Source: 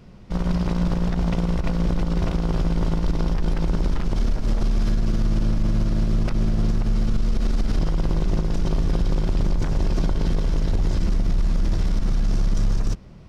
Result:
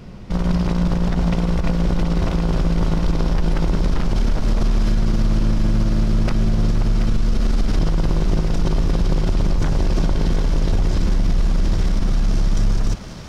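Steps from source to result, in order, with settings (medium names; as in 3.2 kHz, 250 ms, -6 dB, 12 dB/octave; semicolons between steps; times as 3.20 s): peak limiter -20 dBFS, peak gain reduction 6.5 dB; on a send: thinning echo 728 ms, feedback 78%, high-pass 480 Hz, level -8 dB; on the sum: trim +8.5 dB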